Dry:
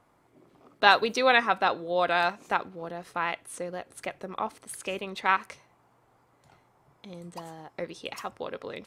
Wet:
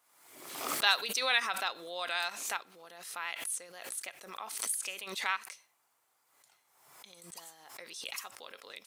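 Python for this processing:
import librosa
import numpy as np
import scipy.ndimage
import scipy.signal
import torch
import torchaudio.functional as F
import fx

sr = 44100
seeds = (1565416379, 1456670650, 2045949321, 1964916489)

y = np.diff(x, prepend=0.0)
y = fx.pre_swell(y, sr, db_per_s=57.0)
y = y * librosa.db_to_amplitude(4.5)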